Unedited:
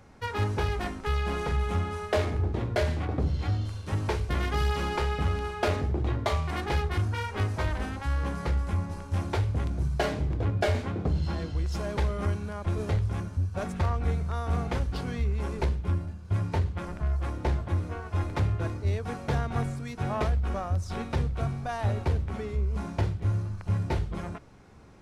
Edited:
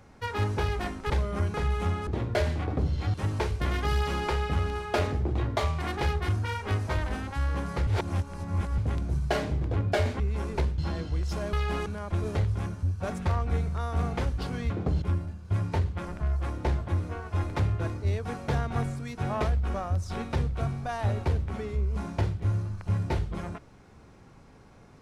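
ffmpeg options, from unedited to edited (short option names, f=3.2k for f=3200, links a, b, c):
-filter_complex "[0:a]asplit=13[a][b][c][d][e][f][g][h][i][j][k][l][m];[a]atrim=end=1.102[n];[b]atrim=start=11.958:end=12.402[o];[c]atrim=start=1.428:end=1.962[p];[d]atrim=start=2.478:end=3.552[q];[e]atrim=start=3.828:end=8.562[r];[f]atrim=start=8.558:end=9.472,asetpts=PTS-STARTPTS,areverse[s];[g]atrim=start=9.468:end=10.892[t];[h]atrim=start=15.238:end=15.822[u];[i]atrim=start=11.208:end=11.962[v];[j]atrim=start=1.098:end=1.432[w];[k]atrim=start=12.398:end=15.242[x];[l]atrim=start=10.888:end=11.212[y];[m]atrim=start=15.818[z];[n][o]acrossfade=d=0.004:c1=hsin:c2=hsin[aa];[aa][p]acrossfade=d=0.004:c1=hsin:c2=hsin[ab];[ab][q]acrossfade=d=0.004:c1=hsin:c2=hsin[ac];[ac][r]acrossfade=d=0.004:c1=hsin:c2=hsin[ad];[ad][s]acrossfade=d=0.004:c1=hsin:c2=hsin[ae];[ae][t]acrossfade=d=0.004:c1=hsin:c2=hsin[af];[af][u]acrossfade=d=0.004:c1=hsin:c2=hsin[ag];[ag][v]acrossfade=d=0.004:c1=hsin:c2=hsin[ah];[ah][w]acrossfade=d=0.004:c1=hsin:c2=hsin[ai];[ai][x]acrossfade=d=0.004:c1=hsin:c2=hsin[aj];[aj][y]acrossfade=d=0.004:c1=hsin:c2=hsin[ak];[ak][z]acrossfade=d=0.004:c1=hsin:c2=hsin"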